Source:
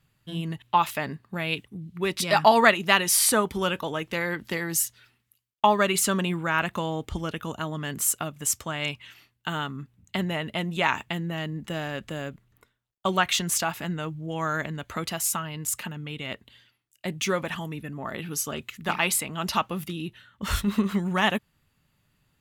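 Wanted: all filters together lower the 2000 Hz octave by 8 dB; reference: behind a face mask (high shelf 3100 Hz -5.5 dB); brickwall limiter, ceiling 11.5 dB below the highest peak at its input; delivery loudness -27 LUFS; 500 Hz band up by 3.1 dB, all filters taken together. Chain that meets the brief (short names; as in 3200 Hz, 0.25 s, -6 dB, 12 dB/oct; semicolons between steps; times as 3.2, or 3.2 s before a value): bell 500 Hz +5 dB; bell 2000 Hz -9 dB; limiter -16 dBFS; high shelf 3100 Hz -5.5 dB; gain +3.5 dB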